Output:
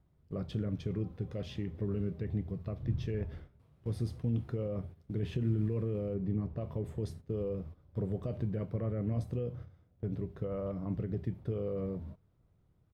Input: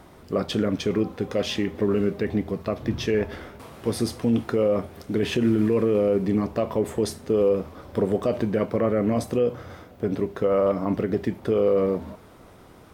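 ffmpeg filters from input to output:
-filter_complex "[0:a]asettb=1/sr,asplit=3[a][b][c];[a]atrim=end=6.144[d];[b]atrim=start=6.14:end=6.61,asetpts=PTS-STARTPTS,afade=t=in:d=0.004:c=qsin,afade=t=out:st=0.466:d=0.004:c=qsin,aemphasis=mode=reproduction:type=75kf[e];[c]atrim=start=6.606[f];[d][e]acrossfade=d=0.004:c1=hsin:c2=qsin[g];[g][f]acrossfade=d=0.004:c1=qsin:c2=hsin,agate=range=-13dB:threshold=-37dB:ratio=16:detection=peak,firequalizer=gain_entry='entry(150,0);entry(220,-13);entry(860,-19);entry(3700,-18);entry(6100,-22)':delay=0.05:min_phase=1,volume=-1.5dB"

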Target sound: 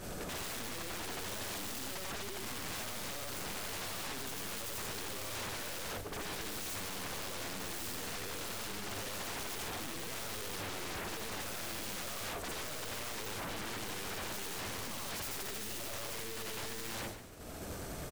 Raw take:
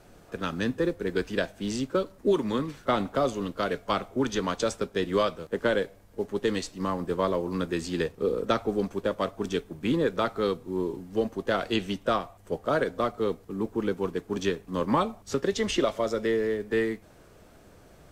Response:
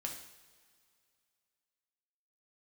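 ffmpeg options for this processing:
-filter_complex "[0:a]afftfilt=real='re':imag='-im':win_size=8192:overlap=0.75,agate=range=-33dB:threshold=-43dB:ratio=3:detection=peak,highshelf=f=5.1k:g=9,alimiter=limit=-23.5dB:level=0:latency=1:release=21,acompressor=mode=upward:threshold=-46dB:ratio=2.5,aeval=exprs='(tanh(112*val(0)+0.15)-tanh(0.15))/112':c=same,aeval=exprs='0.0106*sin(PI/2*5.62*val(0)/0.0106)':c=same,asplit=5[a][b][c][d][e];[b]adelay=143,afreqshift=-100,volume=-11dB[f];[c]adelay=286,afreqshift=-200,volume=-19.2dB[g];[d]adelay=429,afreqshift=-300,volume=-27.4dB[h];[e]adelay=572,afreqshift=-400,volume=-35.5dB[i];[a][f][g][h][i]amix=inputs=5:normalize=0,volume=2dB"

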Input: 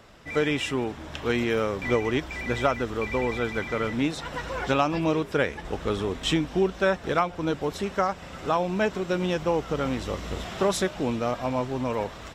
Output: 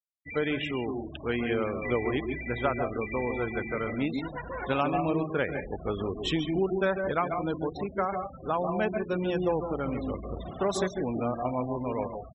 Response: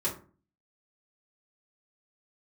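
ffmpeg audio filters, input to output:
-filter_complex "[0:a]asplit=2[a][b];[1:a]atrim=start_sample=2205,asetrate=83790,aresample=44100,adelay=137[c];[b][c]afir=irnorm=-1:irlink=0,volume=-7.5dB[d];[a][d]amix=inputs=2:normalize=0,acrusher=bits=5:mode=log:mix=0:aa=0.000001,afftfilt=real='re*gte(hypot(re,im),0.0355)':imag='im*gte(hypot(re,im),0.0355)':win_size=1024:overlap=0.75,volume=-4.5dB"

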